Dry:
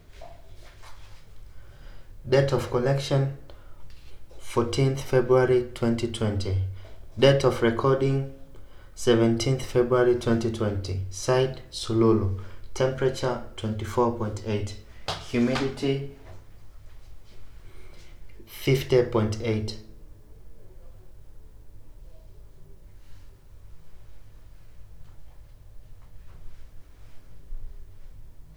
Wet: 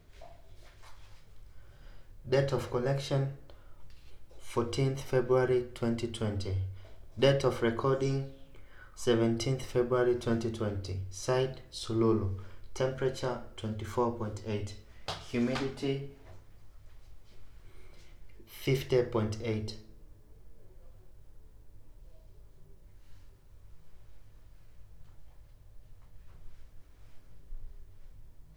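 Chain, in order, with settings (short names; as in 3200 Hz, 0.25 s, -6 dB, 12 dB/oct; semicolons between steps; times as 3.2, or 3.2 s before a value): 7.93–9.04 bell 7700 Hz -> 1000 Hz +14.5 dB 0.53 oct; gain -7 dB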